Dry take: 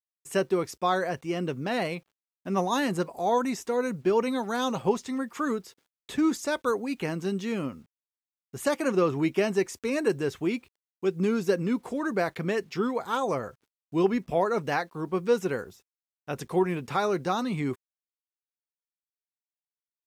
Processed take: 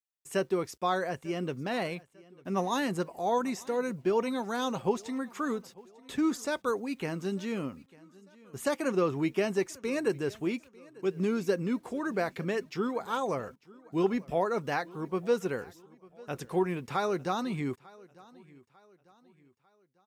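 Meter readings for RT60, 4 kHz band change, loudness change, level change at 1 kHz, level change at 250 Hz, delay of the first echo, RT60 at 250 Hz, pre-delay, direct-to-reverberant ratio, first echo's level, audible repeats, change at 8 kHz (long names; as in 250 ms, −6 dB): no reverb audible, −3.5 dB, −3.5 dB, −3.5 dB, −3.5 dB, 897 ms, no reverb audible, no reverb audible, no reverb audible, −23.0 dB, 2, −3.5 dB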